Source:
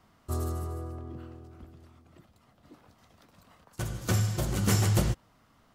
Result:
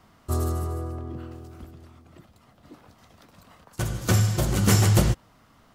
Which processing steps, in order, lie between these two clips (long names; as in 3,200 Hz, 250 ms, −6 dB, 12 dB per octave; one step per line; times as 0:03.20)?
0:01.31–0:01.71: high-shelf EQ 4,200 Hz +8 dB
level +6 dB